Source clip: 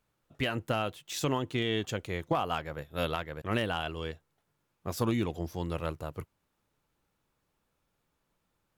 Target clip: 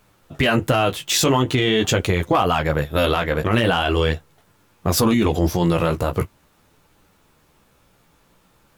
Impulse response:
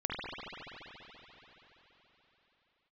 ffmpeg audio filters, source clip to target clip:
-af "flanger=delay=9.6:depth=8.8:regen=-21:speed=0.43:shape=triangular,alimiter=level_in=35.5:limit=0.891:release=50:level=0:latency=1,volume=0.422"

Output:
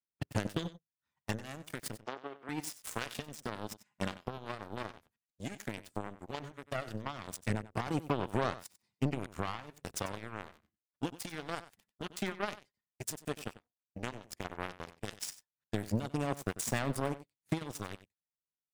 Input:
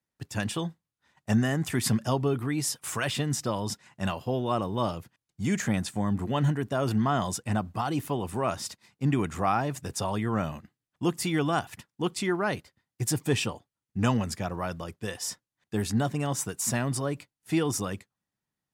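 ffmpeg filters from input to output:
-filter_complex "[0:a]acompressor=threshold=0.0282:ratio=12,aphaser=in_gain=1:out_gain=1:delay=4.9:decay=0.39:speed=0.12:type=sinusoidal,aeval=exprs='0.15*(cos(1*acos(clip(val(0)/0.15,-1,1)))-cos(1*PI/2))+0.0106*(cos(3*acos(clip(val(0)/0.15,-1,1)))-cos(3*PI/2))+0.0266*(cos(5*acos(clip(val(0)/0.15,-1,1)))-cos(5*PI/2))+0.0376*(cos(7*acos(clip(val(0)/0.15,-1,1)))-cos(7*PI/2))':c=same,asettb=1/sr,asplit=3[s0][s1][s2];[s0]atrim=end=1.994[s3];[s1]atrim=start=1.99:end=2.49,asetpts=PTS-STARTPTS,afade=t=in:d=0.004:c=qsin,afade=t=out:st=0.496:d=0.004:c=qsin,highpass=280,lowpass=4000[s4];[s2]atrim=start=2.486[s5];[s3][s4]acrossfade=d=0.004:c1=hsin:c2=qsin[s6];[s6][s5]acrossfade=d=0.004:c1=qsin:c2=hsin,aecho=1:1:94:0.168"

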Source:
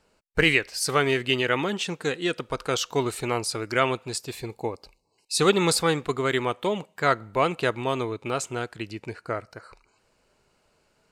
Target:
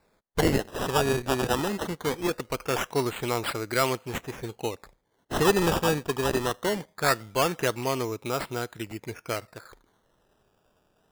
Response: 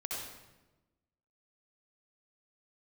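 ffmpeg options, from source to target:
-af "acrusher=samples=14:mix=1:aa=0.000001:lfo=1:lforange=14:lforate=0.21,asoftclip=type=tanh:threshold=0.376,volume=0.891"

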